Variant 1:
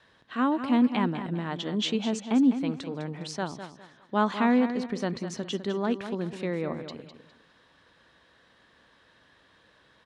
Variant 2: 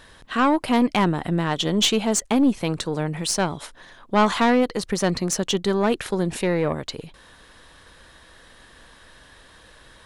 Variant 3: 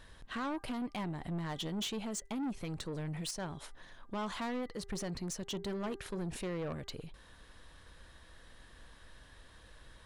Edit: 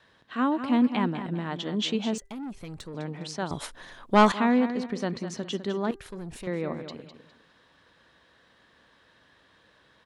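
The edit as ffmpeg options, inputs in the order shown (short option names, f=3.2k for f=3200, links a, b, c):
-filter_complex "[2:a]asplit=2[a][b];[0:a]asplit=4[c][d][e][f];[c]atrim=end=2.182[g];[a]atrim=start=2.178:end=2.942[h];[d]atrim=start=2.938:end=3.512[i];[1:a]atrim=start=3.508:end=4.322[j];[e]atrim=start=4.318:end=5.912[k];[b]atrim=start=5.908:end=6.472[l];[f]atrim=start=6.468[m];[g][h]acrossfade=d=0.004:c1=hsin:c2=hsin[n];[n][i]acrossfade=d=0.004:c1=hsin:c2=hsin[o];[o][j]acrossfade=d=0.004:c1=hsin:c2=hsin[p];[p][k]acrossfade=d=0.004:c1=hsin:c2=hsin[q];[q][l]acrossfade=d=0.004:c1=hsin:c2=hsin[r];[r][m]acrossfade=d=0.004:c1=hsin:c2=hsin"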